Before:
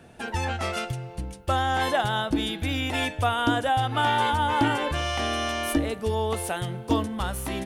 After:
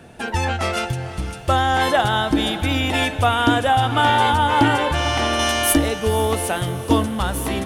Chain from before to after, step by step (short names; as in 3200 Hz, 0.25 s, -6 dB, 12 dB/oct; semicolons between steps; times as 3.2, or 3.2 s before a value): 5.39–5.89 high shelf 4600 Hz +10.5 dB; diffused feedback echo 0.504 s, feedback 51%, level -13 dB; gain +6.5 dB